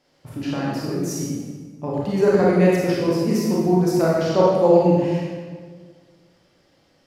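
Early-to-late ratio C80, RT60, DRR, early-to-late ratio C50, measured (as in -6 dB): 1.0 dB, 1.6 s, -5.5 dB, -2.0 dB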